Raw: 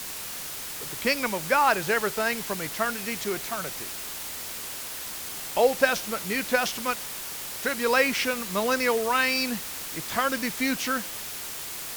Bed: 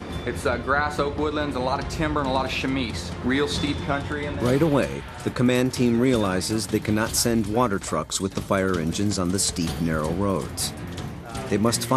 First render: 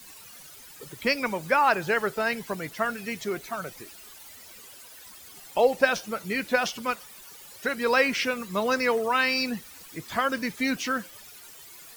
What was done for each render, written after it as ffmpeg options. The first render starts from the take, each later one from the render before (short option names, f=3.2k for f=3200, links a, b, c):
-af "afftdn=nr=15:nf=-36"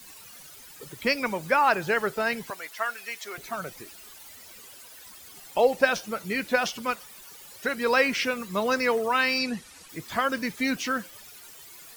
-filter_complex "[0:a]asettb=1/sr,asplit=3[a][b][c];[a]atrim=end=2.504[d];[b]atrim=start=2.5:end=3.38,asetpts=PTS-STARTPTS,afade=t=in:d=0.004:c=qsin,afade=t=out:st=0.876:d=0.004:c=qsin,highpass=770[e];[c]atrim=start=3.376[f];[d][e]acrossfade=d=0.004:c1=hsin:c2=qsin[g];[g][f]acrossfade=d=0.004:c1=qsin:c2=hsin,asplit=3[h][i][j];[h]afade=t=out:st=9.38:d=0.02[k];[i]lowpass=f=11k:w=0.5412,lowpass=f=11k:w=1.3066,afade=t=in:st=9.38:d=0.02,afade=t=out:st=9.88:d=0.02[l];[j]afade=t=in:st=9.88:d=0.02[m];[k][l][m]amix=inputs=3:normalize=0"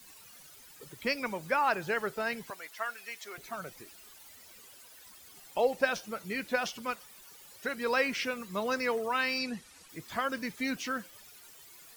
-af "volume=-6.5dB"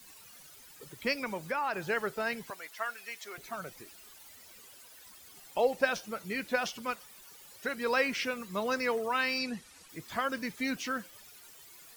-filter_complex "[0:a]asettb=1/sr,asplit=3[a][b][c];[a]atrim=end=1.234[d];[b]atrim=start=1.23:end=1.83,asetpts=PTS-STARTPTS,afade=t=in:d=0.004:c=qsin,afade=t=out:st=0.596:d=0.004:c=qsin,acompressor=threshold=-29dB:ratio=3:attack=3.2:release=140:knee=1:detection=peak[e];[c]atrim=start=1.826[f];[d][e]acrossfade=d=0.004:c1=hsin:c2=qsin[g];[g][f]acrossfade=d=0.004:c1=qsin:c2=hsin"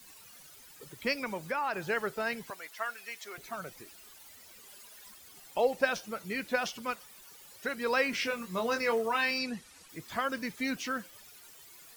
-filter_complex "[0:a]asettb=1/sr,asplit=3[a][b][c];[a]atrim=end=4.664[d];[b]atrim=start=4.66:end=5.14,asetpts=PTS-STARTPTS,afade=t=in:d=0.004:c=qsin,afade=t=out:st=0.476:d=0.004:c=qsin,aecho=1:1:4.9:0.65,atrim=end_sample=21168[e];[c]atrim=start=5.136[f];[d][e]acrossfade=d=0.004:c1=hsin:c2=qsin[g];[g][f]acrossfade=d=0.004:c1=qsin:c2=hsin,asettb=1/sr,asplit=3[h][i][j];[h]atrim=end=8.114[k];[i]atrim=start=8.11:end=9.31,asetpts=PTS-STARTPTS,afade=t=in:d=0.004:c=qsin,afade=t=out:st=1.196:d=0.004:c=qsin,asplit=2[l][m];[m]adelay=22,volume=-5.5dB[n];[l][n]amix=inputs=2:normalize=0,atrim=end_sample=52920[o];[j]atrim=start=9.306[p];[k][o]acrossfade=d=0.004:c1=hsin:c2=qsin[q];[q][p]acrossfade=d=0.004:c1=qsin:c2=hsin"